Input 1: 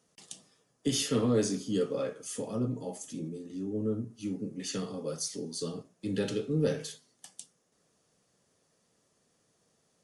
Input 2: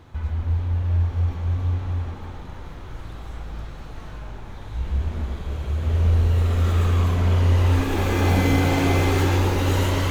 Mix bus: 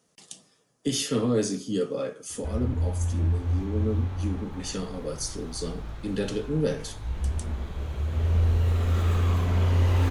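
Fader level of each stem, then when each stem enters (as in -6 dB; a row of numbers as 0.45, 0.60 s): +2.5, -4.0 dB; 0.00, 2.30 s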